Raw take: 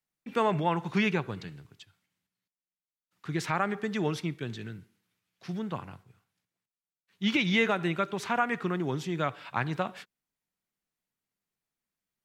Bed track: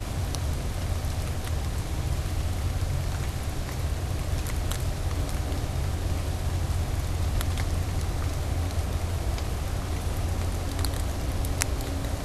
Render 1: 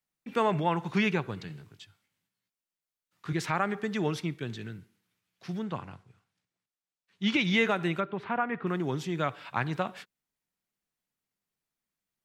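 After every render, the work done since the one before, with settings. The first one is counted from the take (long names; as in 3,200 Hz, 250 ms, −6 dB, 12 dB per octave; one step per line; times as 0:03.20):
0:01.48–0:03.33: double-tracking delay 19 ms −3 dB
0:05.63–0:07.41: low-pass filter 8,500 Hz
0:08.00–0:08.67: high-frequency loss of the air 460 metres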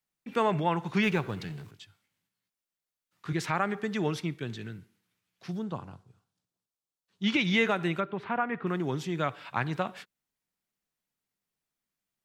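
0:01.03–0:01.71: mu-law and A-law mismatch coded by mu
0:05.51–0:07.24: parametric band 2,100 Hz −11.5 dB 1 octave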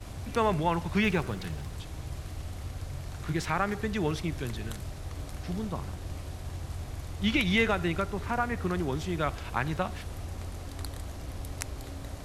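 mix in bed track −10 dB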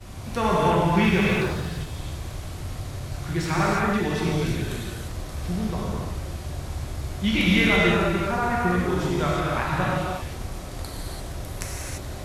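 reverb whose tail is shaped and stops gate 370 ms flat, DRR −6 dB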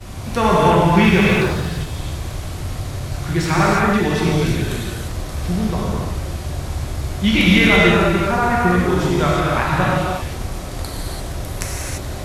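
level +7 dB
brickwall limiter −2 dBFS, peak gain reduction 2 dB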